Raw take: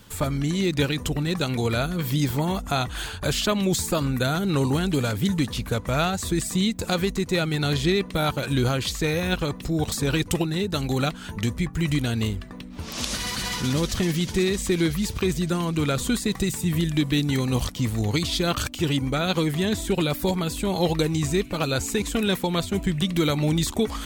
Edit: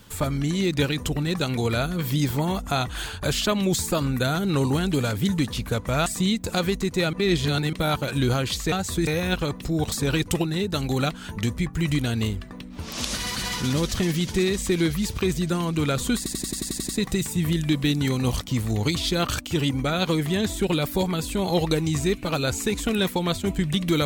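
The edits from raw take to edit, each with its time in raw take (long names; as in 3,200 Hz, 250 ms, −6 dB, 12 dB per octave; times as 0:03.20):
0:06.06–0:06.41: move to 0:09.07
0:07.48–0:08.08: reverse
0:16.17: stutter 0.09 s, 9 plays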